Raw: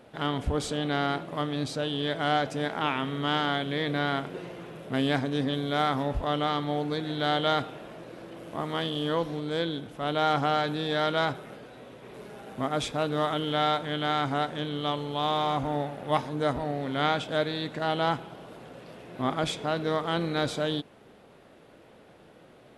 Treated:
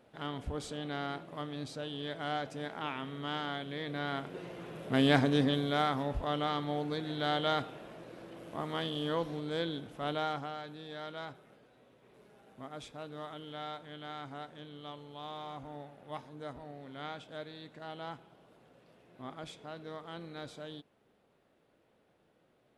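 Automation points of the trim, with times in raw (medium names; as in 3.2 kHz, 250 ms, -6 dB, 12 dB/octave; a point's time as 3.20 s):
3.87 s -10 dB
5.24 s +2 dB
5.95 s -5.5 dB
10.09 s -5.5 dB
10.54 s -16.5 dB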